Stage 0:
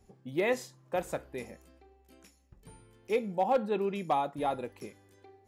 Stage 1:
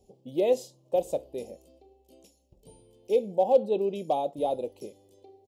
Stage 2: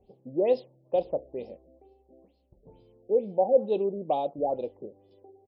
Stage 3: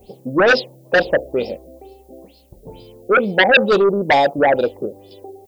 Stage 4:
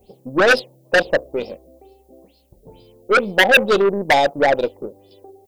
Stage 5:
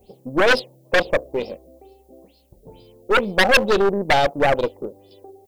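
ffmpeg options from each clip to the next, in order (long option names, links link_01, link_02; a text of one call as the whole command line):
ffmpeg -i in.wav -af "firequalizer=gain_entry='entry(120,0);entry(560,12);entry(1500,-25);entry(2900,4)':delay=0.05:min_phase=1,volume=-3.5dB" out.wav
ffmpeg -i in.wav -af "afftfilt=real='re*lt(b*sr/1024,740*pow(5500/740,0.5+0.5*sin(2*PI*2.2*pts/sr)))':imag='im*lt(b*sr/1024,740*pow(5500/740,0.5+0.5*sin(2*PI*2.2*pts/sr)))':win_size=1024:overlap=0.75" out.wav
ffmpeg -i in.wav -af "aeval=exprs='0.299*sin(PI/2*3.98*val(0)/0.299)':channel_layout=same,crystalizer=i=5.5:c=0" out.wav
ffmpeg -i in.wav -af "aeval=exprs='0.891*(cos(1*acos(clip(val(0)/0.891,-1,1)))-cos(1*PI/2))+0.0158*(cos(5*acos(clip(val(0)/0.891,-1,1)))-cos(5*PI/2))+0.0794*(cos(7*acos(clip(val(0)/0.891,-1,1)))-cos(7*PI/2))+0.0141*(cos(8*acos(clip(val(0)/0.891,-1,1)))-cos(8*PI/2))':channel_layout=same" out.wav
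ffmpeg -i in.wav -af "aeval=exprs='clip(val(0),-1,0.106)':channel_layout=same" out.wav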